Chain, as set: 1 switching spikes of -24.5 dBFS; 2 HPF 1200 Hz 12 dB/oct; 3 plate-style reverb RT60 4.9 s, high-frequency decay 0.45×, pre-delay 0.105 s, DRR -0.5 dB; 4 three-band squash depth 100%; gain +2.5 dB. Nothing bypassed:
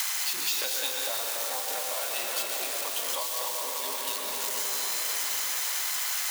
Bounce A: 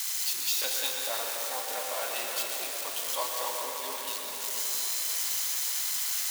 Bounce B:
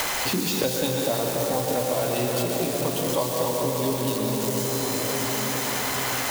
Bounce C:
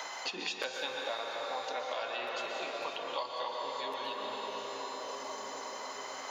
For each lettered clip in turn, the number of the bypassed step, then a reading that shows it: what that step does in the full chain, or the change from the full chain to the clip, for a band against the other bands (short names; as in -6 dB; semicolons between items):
4, momentary loudness spread change +3 LU; 2, 250 Hz band +21.5 dB; 1, distortion -3 dB